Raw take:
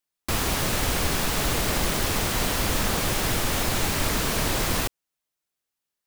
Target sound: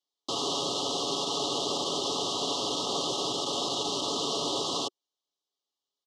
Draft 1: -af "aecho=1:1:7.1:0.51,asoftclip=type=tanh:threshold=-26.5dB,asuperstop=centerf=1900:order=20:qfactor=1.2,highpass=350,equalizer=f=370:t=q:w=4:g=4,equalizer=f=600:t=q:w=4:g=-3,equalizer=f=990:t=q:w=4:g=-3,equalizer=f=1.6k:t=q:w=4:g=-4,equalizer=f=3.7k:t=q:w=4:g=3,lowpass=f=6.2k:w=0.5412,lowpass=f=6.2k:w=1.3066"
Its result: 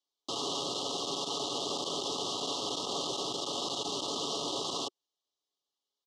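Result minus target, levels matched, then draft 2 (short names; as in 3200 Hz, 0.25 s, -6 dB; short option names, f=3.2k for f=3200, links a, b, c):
soft clip: distortion +9 dB
-af "aecho=1:1:7.1:0.51,asoftclip=type=tanh:threshold=-17dB,asuperstop=centerf=1900:order=20:qfactor=1.2,highpass=350,equalizer=f=370:t=q:w=4:g=4,equalizer=f=600:t=q:w=4:g=-3,equalizer=f=990:t=q:w=4:g=-3,equalizer=f=1.6k:t=q:w=4:g=-4,equalizer=f=3.7k:t=q:w=4:g=3,lowpass=f=6.2k:w=0.5412,lowpass=f=6.2k:w=1.3066"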